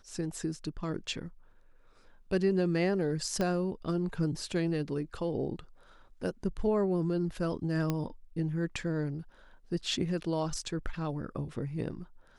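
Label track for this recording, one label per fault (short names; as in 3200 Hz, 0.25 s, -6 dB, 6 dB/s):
3.410000	3.410000	pop -18 dBFS
7.900000	7.900000	pop -17 dBFS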